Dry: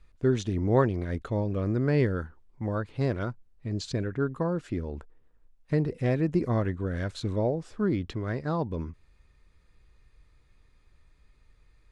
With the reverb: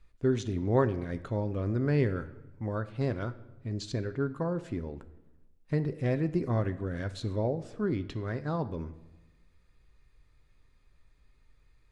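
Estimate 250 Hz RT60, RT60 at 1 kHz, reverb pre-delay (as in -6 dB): 1.3 s, 1.0 s, 7 ms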